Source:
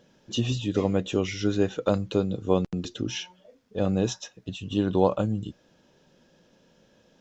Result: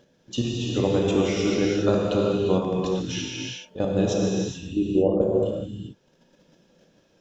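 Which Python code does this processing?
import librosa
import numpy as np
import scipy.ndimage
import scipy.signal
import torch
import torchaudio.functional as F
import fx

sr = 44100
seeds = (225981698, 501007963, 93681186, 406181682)

y = fx.envelope_sharpen(x, sr, power=3.0, at=(4.65, 5.21), fade=0.02)
y = fx.level_steps(y, sr, step_db=12)
y = fx.rev_gated(y, sr, seeds[0], gate_ms=450, shape='flat', drr_db=-3.5)
y = F.gain(torch.from_numpy(y), 2.0).numpy()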